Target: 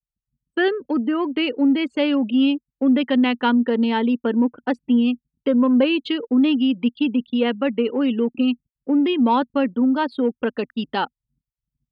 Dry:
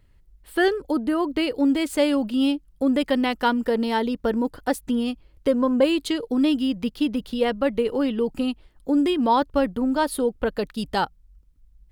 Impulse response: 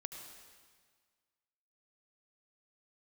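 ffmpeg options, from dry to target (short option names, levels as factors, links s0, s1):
-filter_complex "[0:a]afftfilt=real='re*gte(hypot(re,im),0.0126)':imag='im*gte(hypot(re,im),0.0126)':win_size=1024:overlap=0.75,anlmdn=0.158,asplit=2[s0][s1];[s1]asoftclip=type=tanh:threshold=0.0596,volume=0.282[s2];[s0][s2]amix=inputs=2:normalize=0,highpass=240,equalizer=f=240:t=q:w=4:g=9,equalizer=f=650:t=q:w=4:g=-5,equalizer=f=2700:t=q:w=4:g=6,lowpass=f=3700:w=0.5412,lowpass=f=3700:w=1.3066"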